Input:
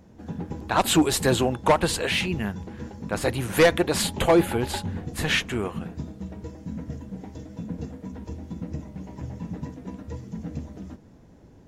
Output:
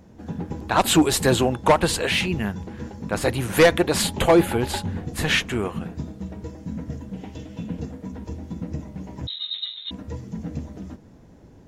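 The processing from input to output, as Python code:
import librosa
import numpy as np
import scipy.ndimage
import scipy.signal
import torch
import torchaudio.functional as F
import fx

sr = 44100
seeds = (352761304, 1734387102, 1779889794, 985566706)

y = fx.peak_eq(x, sr, hz=2900.0, db=11.5, octaves=0.63, at=(7.13, 7.8))
y = fx.freq_invert(y, sr, carrier_hz=3900, at=(9.27, 9.91))
y = y * 10.0 ** (2.5 / 20.0)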